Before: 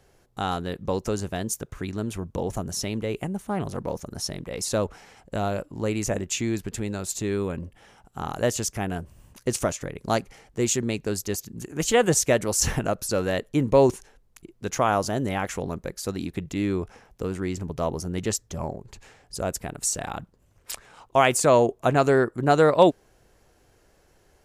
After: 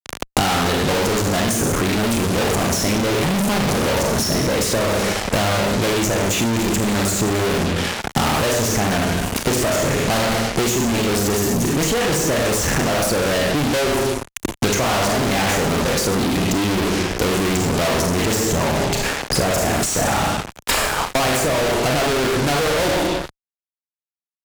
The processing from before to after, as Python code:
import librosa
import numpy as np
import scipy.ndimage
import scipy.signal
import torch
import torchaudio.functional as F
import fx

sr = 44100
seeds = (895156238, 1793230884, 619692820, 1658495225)

y = fx.high_shelf(x, sr, hz=6100.0, db=-7.0)
y = fx.rev_schroeder(y, sr, rt60_s=0.66, comb_ms=27, drr_db=1.0)
y = fx.rider(y, sr, range_db=4, speed_s=0.5)
y = fx.fuzz(y, sr, gain_db=43.0, gate_db=-46.0)
y = fx.band_squash(y, sr, depth_pct=100)
y = y * librosa.db_to_amplitude(-5.0)